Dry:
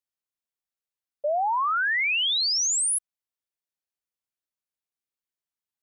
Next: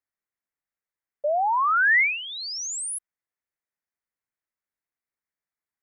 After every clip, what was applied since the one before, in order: resonant high shelf 2.5 kHz -7 dB, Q 3; trim +1 dB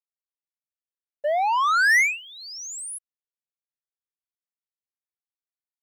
waveshaping leveller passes 2; upward expansion 2.5:1, over -27 dBFS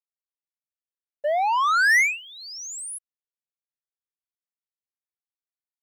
no audible change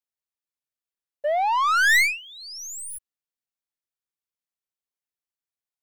tracing distortion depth 0.044 ms

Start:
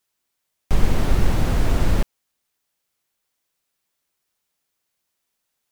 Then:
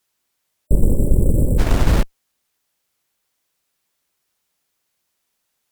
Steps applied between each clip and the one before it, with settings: spectral selection erased 0.67–1.59 s, 620–7400 Hz; Chebyshev shaper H 8 -25 dB, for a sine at -3 dBFS; trim +4 dB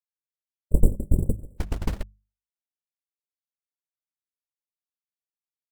gate -9 dBFS, range -36 dB; hum notches 50/100/150/200 Hz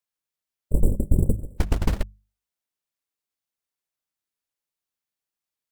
peak limiter -13 dBFS, peak gain reduction 9.5 dB; trim +6 dB

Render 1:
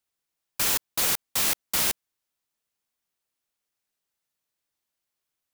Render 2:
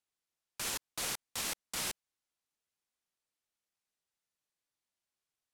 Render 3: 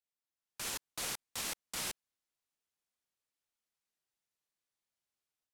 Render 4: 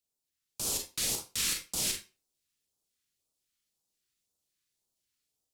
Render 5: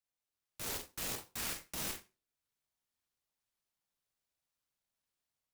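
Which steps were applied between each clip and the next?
peak limiter -18 dBFS, peak gain reduction 7 dB; low-pass 11 kHz 12 dB/octave; trim -5.5 dB
level rider gain up to 7 dB; trim -9 dB
phase shifter stages 2, 1.9 Hz, lowest notch 650–1900 Hz; reverberation RT60 0.30 s, pre-delay 31 ms, DRR 2.5 dB; trim +7 dB
touch-sensitive phaser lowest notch 360 Hz, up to 3.7 kHz, full sweep at -37.5 dBFS; delay time shaken by noise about 4.2 kHz, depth 0.043 ms; trim -4.5 dB

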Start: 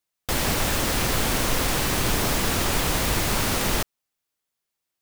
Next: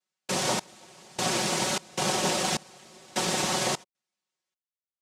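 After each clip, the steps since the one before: noise-vocoded speech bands 2; comb 5.4 ms; trance gate "xxx...xxx." 76 bpm -24 dB; trim -3 dB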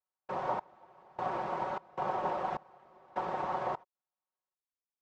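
resonant low-pass 1 kHz, resonance Q 1.8; peaking EQ 210 Hz -10.5 dB 1.7 oct; trim -5 dB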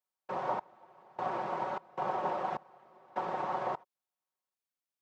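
high-pass 120 Hz 12 dB/octave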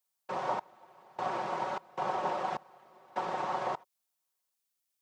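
treble shelf 3.2 kHz +11.5 dB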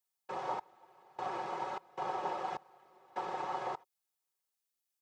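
comb 2.4 ms, depth 39%; trim -5 dB

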